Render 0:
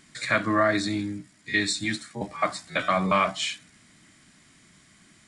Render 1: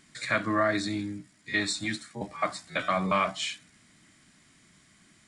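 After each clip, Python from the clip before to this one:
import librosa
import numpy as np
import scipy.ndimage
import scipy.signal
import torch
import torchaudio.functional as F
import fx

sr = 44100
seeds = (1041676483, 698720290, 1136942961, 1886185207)

y = fx.spec_box(x, sr, start_s=1.52, length_s=0.35, low_hz=500.0, high_hz=1500.0, gain_db=8)
y = y * 10.0 ** (-3.5 / 20.0)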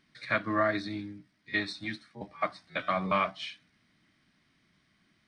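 y = scipy.signal.savgol_filter(x, 15, 4, mode='constant')
y = fx.upward_expand(y, sr, threshold_db=-37.0, expansion=1.5)
y = y * 10.0 ** (-1.0 / 20.0)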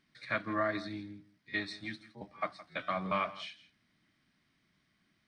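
y = x + 10.0 ** (-17.5 / 20.0) * np.pad(x, (int(166 * sr / 1000.0), 0))[:len(x)]
y = y * 10.0 ** (-5.0 / 20.0)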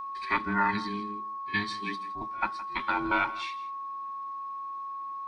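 y = fx.band_invert(x, sr, width_hz=500)
y = y + 10.0 ** (-40.0 / 20.0) * np.sin(2.0 * np.pi * 1100.0 * np.arange(len(y)) / sr)
y = y * 10.0 ** (5.5 / 20.0)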